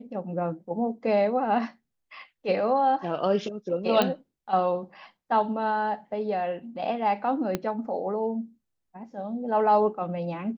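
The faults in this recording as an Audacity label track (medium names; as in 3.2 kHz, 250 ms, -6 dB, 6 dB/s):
4.020000	4.020000	pop -10 dBFS
7.550000	7.550000	pop -13 dBFS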